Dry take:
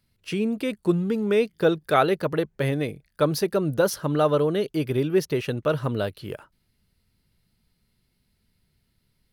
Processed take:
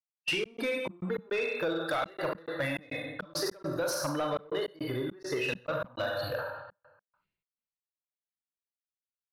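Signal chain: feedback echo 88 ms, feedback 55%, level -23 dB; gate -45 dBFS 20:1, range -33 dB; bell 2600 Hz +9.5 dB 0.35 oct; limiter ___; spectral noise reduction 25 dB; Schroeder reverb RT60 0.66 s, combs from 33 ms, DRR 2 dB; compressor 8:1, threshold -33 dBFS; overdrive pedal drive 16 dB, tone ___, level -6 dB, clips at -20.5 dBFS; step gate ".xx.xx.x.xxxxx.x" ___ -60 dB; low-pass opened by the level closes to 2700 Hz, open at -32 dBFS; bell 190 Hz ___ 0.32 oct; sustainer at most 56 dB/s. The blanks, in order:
-15 dBFS, 5800 Hz, 103 bpm, +2.5 dB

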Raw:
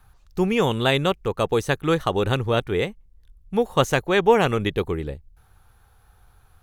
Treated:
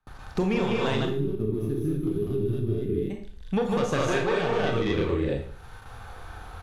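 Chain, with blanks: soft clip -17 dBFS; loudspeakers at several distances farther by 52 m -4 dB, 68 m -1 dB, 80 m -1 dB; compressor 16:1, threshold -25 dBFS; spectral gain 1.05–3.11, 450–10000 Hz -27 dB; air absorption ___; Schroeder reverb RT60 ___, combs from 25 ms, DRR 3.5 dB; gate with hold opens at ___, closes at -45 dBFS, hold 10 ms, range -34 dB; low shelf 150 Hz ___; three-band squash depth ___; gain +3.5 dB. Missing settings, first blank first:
66 m, 0.42 s, -44 dBFS, -2.5 dB, 40%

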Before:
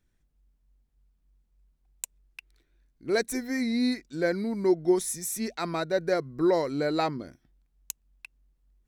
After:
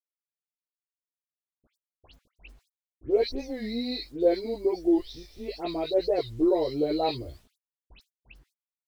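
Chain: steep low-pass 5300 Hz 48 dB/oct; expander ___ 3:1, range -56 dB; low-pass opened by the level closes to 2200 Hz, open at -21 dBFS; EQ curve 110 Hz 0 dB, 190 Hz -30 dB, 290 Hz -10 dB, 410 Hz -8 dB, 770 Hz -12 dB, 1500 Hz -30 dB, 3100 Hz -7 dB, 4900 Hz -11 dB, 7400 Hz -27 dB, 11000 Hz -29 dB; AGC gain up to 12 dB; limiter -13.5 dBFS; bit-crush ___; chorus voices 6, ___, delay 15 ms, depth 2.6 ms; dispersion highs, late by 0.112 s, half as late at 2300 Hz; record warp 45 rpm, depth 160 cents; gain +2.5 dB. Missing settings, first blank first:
-53 dBFS, 10-bit, 0.94 Hz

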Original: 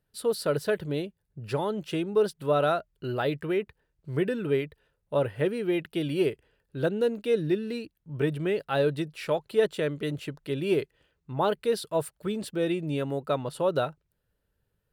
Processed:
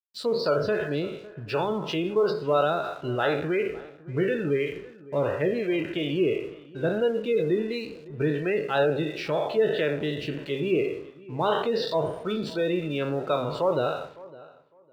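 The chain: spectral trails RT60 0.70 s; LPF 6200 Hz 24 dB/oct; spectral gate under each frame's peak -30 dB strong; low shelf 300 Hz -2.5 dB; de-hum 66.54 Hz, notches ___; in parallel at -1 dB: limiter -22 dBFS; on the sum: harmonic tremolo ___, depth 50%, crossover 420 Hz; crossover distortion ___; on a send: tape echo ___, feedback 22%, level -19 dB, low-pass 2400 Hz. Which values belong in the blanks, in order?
30, 2.9 Hz, -52 dBFS, 0.557 s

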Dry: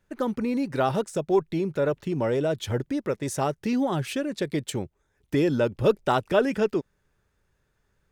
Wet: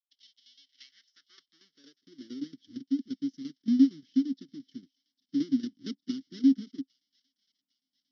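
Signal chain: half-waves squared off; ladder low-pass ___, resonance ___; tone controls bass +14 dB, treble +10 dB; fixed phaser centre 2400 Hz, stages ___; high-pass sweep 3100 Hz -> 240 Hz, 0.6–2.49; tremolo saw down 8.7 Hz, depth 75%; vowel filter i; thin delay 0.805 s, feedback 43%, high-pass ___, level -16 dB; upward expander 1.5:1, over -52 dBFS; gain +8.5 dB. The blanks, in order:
5700 Hz, 80%, 6, 2600 Hz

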